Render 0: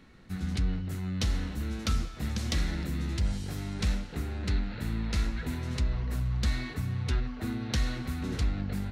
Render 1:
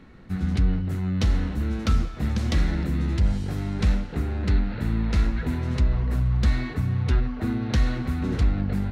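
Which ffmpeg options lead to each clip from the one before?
-af "highshelf=f=2.8k:g=-11.5,volume=7.5dB"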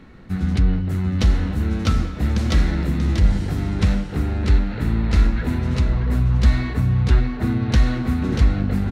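-af "aecho=1:1:636:0.398,volume=4dB"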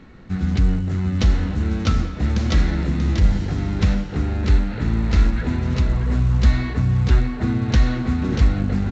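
-ar 16000 -c:a pcm_mulaw

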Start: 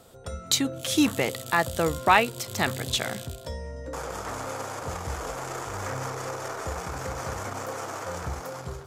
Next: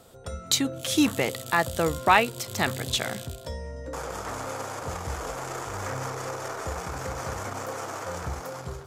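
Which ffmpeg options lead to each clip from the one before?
-af anull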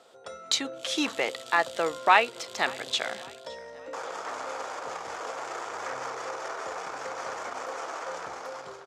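-af "highpass=460,lowpass=5.5k,aecho=1:1:566|1132|1698:0.0708|0.034|0.0163"

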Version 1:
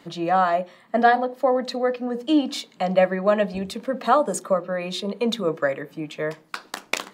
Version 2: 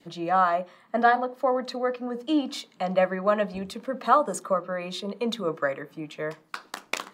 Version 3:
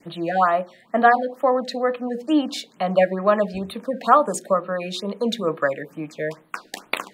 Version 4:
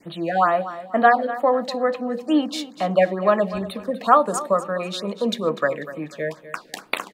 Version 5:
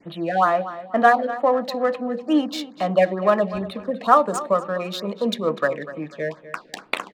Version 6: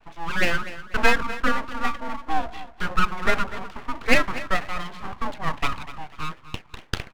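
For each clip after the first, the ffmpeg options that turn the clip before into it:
-af "adynamicequalizer=threshold=0.0158:dfrequency=1200:dqfactor=2:tfrequency=1200:tqfactor=2:attack=5:release=100:ratio=0.375:range=3.5:mode=boostabove:tftype=bell,volume=-5dB"
-af "afftfilt=real='re*(1-between(b*sr/1024,980*pow(6600/980,0.5+0.5*sin(2*PI*2.2*pts/sr))/1.41,980*pow(6600/980,0.5+0.5*sin(2*PI*2.2*pts/sr))*1.41))':imag='im*(1-between(b*sr/1024,980*pow(6600/980,0.5+0.5*sin(2*PI*2.2*pts/sr))/1.41,980*pow(6600/980,0.5+0.5*sin(2*PI*2.2*pts/sr))*1.41))':win_size=1024:overlap=0.75,volume=5dB"
-af "aecho=1:1:246|492|738:0.188|0.0622|0.0205"
-af "adynamicsmooth=sensitivity=5.5:basefreq=3.8k"
-af "highpass=f=240:t=q:w=0.5412,highpass=f=240:t=q:w=1.307,lowpass=f=2.6k:t=q:w=0.5176,lowpass=f=2.6k:t=q:w=0.7071,lowpass=f=2.6k:t=q:w=1.932,afreqshift=81,aeval=exprs='abs(val(0))':c=same"

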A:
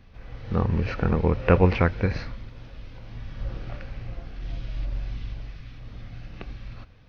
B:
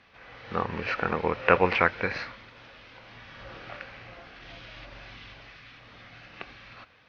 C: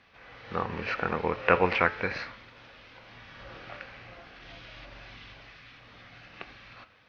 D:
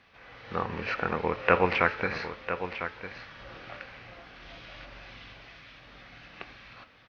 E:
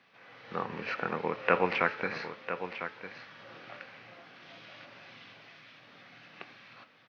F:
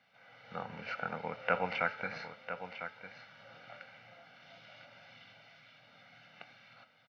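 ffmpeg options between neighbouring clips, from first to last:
-af "bandpass=f=1.9k:t=q:w=0.62:csg=0,volume=6dB"
-af "bandreject=f=107.9:t=h:w=4,bandreject=f=215.8:t=h:w=4,bandreject=f=323.7:t=h:w=4,bandreject=f=431.6:t=h:w=4,bandreject=f=539.5:t=h:w=4,bandreject=f=647.4:t=h:w=4,bandreject=f=755.3:t=h:w=4,bandreject=f=863.2:t=h:w=4,bandreject=f=971.1:t=h:w=4,bandreject=f=1.079k:t=h:w=4,bandreject=f=1.1869k:t=h:w=4,bandreject=f=1.2948k:t=h:w=4,bandreject=f=1.4027k:t=h:w=4,bandreject=f=1.5106k:t=h:w=4,bandreject=f=1.6185k:t=h:w=4,bandreject=f=1.7264k:t=h:w=4,bandreject=f=1.8343k:t=h:w=4,bandreject=f=1.9422k:t=h:w=4,bandreject=f=2.0501k:t=h:w=4,bandreject=f=2.158k:t=h:w=4,bandreject=f=2.2659k:t=h:w=4,bandreject=f=2.3738k:t=h:w=4,bandreject=f=2.4817k:t=h:w=4,bandreject=f=2.5896k:t=h:w=4,bandreject=f=2.6975k:t=h:w=4,bandreject=f=2.8054k:t=h:w=4,bandreject=f=2.9133k:t=h:w=4,bandreject=f=3.0212k:t=h:w=4,bandreject=f=3.1291k:t=h:w=4,bandreject=f=3.237k:t=h:w=4,volume=-1.5dB"
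-af "aecho=1:1:1001:0.316"
-af "highpass=f=130:w=0.5412,highpass=f=130:w=1.3066,volume=-3.5dB"
-af "aecho=1:1:1.4:0.73,volume=-7dB"

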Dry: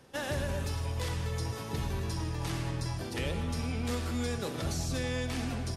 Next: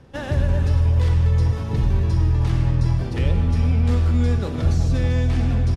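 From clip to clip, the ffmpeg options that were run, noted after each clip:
-af "aemphasis=mode=reproduction:type=bsi,aecho=1:1:389:0.299,volume=4.5dB"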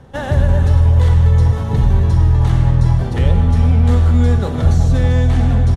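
-af "equalizer=f=315:t=o:w=0.33:g=-6,equalizer=f=800:t=o:w=0.33:g=4,equalizer=f=2.5k:t=o:w=0.33:g=-7,equalizer=f=5k:t=o:w=0.33:g=-8,volume=6.5dB"

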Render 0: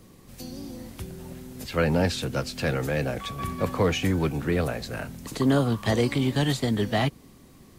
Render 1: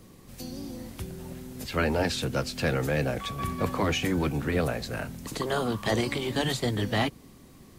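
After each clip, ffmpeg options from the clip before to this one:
-af "afftfilt=real='re*lt(hypot(re,im),0.501)':imag='im*lt(hypot(re,im),0.501)':win_size=1024:overlap=0.75"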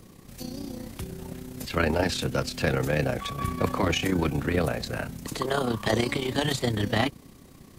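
-af "tremolo=f=31:d=0.571,volume=4dB"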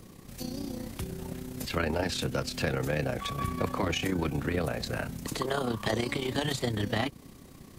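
-af "acompressor=threshold=-29dB:ratio=2"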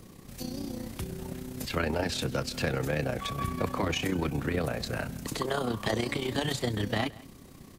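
-af "aecho=1:1:169:0.0841"

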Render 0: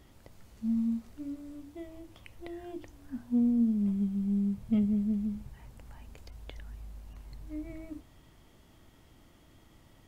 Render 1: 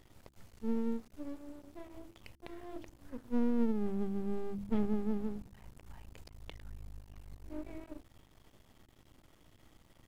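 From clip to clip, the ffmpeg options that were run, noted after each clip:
-af "aeval=exprs='max(val(0),0)':c=same,bandreject=f=66.86:t=h:w=4,bandreject=f=133.72:t=h:w=4,bandreject=f=200.58:t=h:w=4,bandreject=f=267.44:t=h:w=4,bandreject=f=334.3:t=h:w=4"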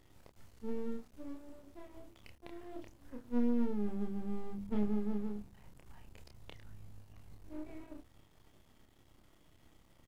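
-filter_complex "[0:a]asplit=2[a][b];[b]adelay=29,volume=-4dB[c];[a][c]amix=inputs=2:normalize=0,volume=-4dB"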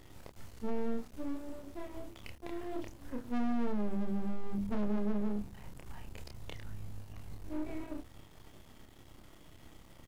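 -af "asoftclip=type=tanh:threshold=-35dB,volume=9dB"

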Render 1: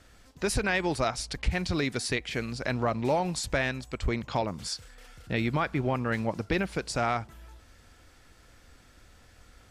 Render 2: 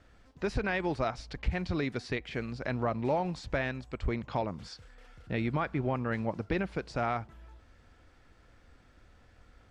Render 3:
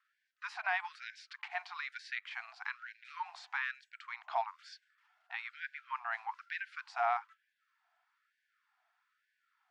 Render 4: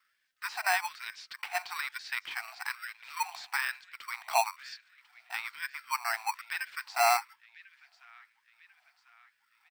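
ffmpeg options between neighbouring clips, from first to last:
-filter_complex "[0:a]acrossover=split=6700[a][b];[b]acompressor=threshold=-52dB:ratio=4:attack=1:release=60[c];[a][c]amix=inputs=2:normalize=0,aemphasis=mode=reproduction:type=75fm,volume=-3.5dB"
-af "agate=range=-11dB:threshold=-47dB:ratio=16:detection=peak,lowpass=f=1.9k:p=1,afftfilt=real='re*gte(b*sr/1024,630*pow(1500/630,0.5+0.5*sin(2*PI*1.1*pts/sr)))':imag='im*gte(b*sr/1024,630*pow(1500/630,0.5+0.5*sin(2*PI*1.1*pts/sr)))':win_size=1024:overlap=0.75,volume=2.5dB"
-filter_complex "[0:a]acrossover=split=1700[a][b];[a]acrusher=samples=13:mix=1:aa=0.000001[c];[b]aecho=1:1:1045|2090|3135|4180:0.141|0.0692|0.0339|0.0166[d];[c][d]amix=inputs=2:normalize=0,volume=7.5dB"

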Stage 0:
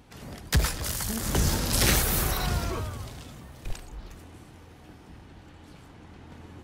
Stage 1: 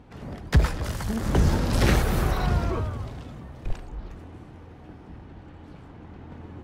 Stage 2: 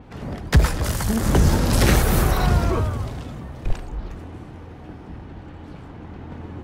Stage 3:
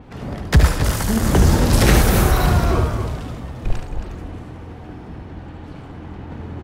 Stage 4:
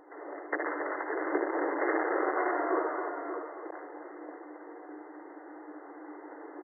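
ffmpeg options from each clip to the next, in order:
-af "lowpass=f=1.2k:p=1,volume=5dB"
-filter_complex "[0:a]asplit=2[a][b];[b]alimiter=limit=-15.5dB:level=0:latency=1:release=238,volume=0.5dB[c];[a][c]amix=inputs=2:normalize=0,adynamicequalizer=threshold=0.00501:dfrequency=6100:dqfactor=0.7:tfrequency=6100:tqfactor=0.7:attack=5:release=100:ratio=0.375:range=3.5:mode=boostabove:tftype=highshelf"
-af "aecho=1:1:72.89|271.1:0.447|0.355,volume=2dB"
-af "aecho=1:1:60|586:0.335|0.398,volume=11.5dB,asoftclip=hard,volume=-11.5dB,afftfilt=real='re*between(b*sr/4096,280,2100)':imag='im*between(b*sr/4096,280,2100)':win_size=4096:overlap=0.75,volume=-7dB"

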